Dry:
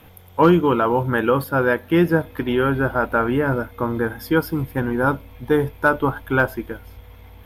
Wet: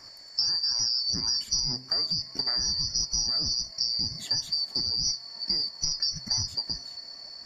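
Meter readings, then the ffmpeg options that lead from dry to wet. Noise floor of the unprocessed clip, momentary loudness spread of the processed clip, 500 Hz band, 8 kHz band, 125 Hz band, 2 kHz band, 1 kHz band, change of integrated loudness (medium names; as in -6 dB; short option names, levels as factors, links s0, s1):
-45 dBFS, 7 LU, -32.0 dB, no reading, -18.5 dB, -27.0 dB, -26.5 dB, -6.0 dB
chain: -af "afftfilt=real='real(if(lt(b,272),68*(eq(floor(b/68),0)*1+eq(floor(b/68),1)*2+eq(floor(b/68),2)*3+eq(floor(b/68),3)*0)+mod(b,68),b),0)':imag='imag(if(lt(b,272),68*(eq(floor(b/68),0)*1+eq(floor(b/68),1)*2+eq(floor(b/68),2)*3+eq(floor(b/68),3)*0)+mod(b,68),b),0)':win_size=2048:overlap=0.75,alimiter=limit=0.266:level=0:latency=1:release=21,highshelf=f=4800:g=-9.5,acompressor=threshold=0.0355:ratio=6,lowpass=f=7200:t=q:w=13,bandreject=f=129.2:t=h:w=4,bandreject=f=258.4:t=h:w=4,bandreject=f=387.6:t=h:w=4,bandreject=f=516.8:t=h:w=4,bandreject=f=646:t=h:w=4,bandreject=f=775.2:t=h:w=4,bandreject=f=904.4:t=h:w=4,bandreject=f=1033.6:t=h:w=4,bandreject=f=1162.8:t=h:w=4,bandreject=f=1292:t=h:w=4,bandreject=f=1421.2:t=h:w=4,bandreject=f=1550.4:t=h:w=4,bandreject=f=1679.6:t=h:w=4,bandreject=f=1808.8:t=h:w=4,bandreject=f=1938:t=h:w=4,bandreject=f=2067.2:t=h:w=4,bandreject=f=2196.4:t=h:w=4,bandreject=f=2325.6:t=h:w=4,bandreject=f=2454.8:t=h:w=4,bandreject=f=2584:t=h:w=4,bandreject=f=2713.2:t=h:w=4,bandreject=f=2842.4:t=h:w=4,bandreject=f=2971.6:t=h:w=4"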